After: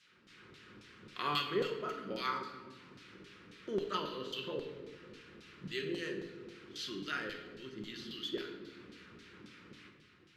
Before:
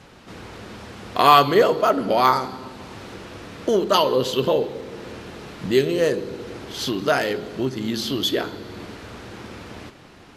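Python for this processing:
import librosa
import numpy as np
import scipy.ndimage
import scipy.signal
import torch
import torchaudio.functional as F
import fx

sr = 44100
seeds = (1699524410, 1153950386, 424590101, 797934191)

y = fx.curve_eq(x, sr, hz=(110.0, 420.0, 720.0, 1300.0, 2700.0), db=(0, -9, -27, -9, -6))
y = fx.filter_lfo_bandpass(y, sr, shape='saw_down', hz=3.7, low_hz=420.0, high_hz=4600.0, q=0.8)
y = fx.room_shoebox(y, sr, seeds[0], volume_m3=670.0, walls='mixed', distance_m=0.95)
y = F.gain(torch.from_numpy(y), -5.5).numpy()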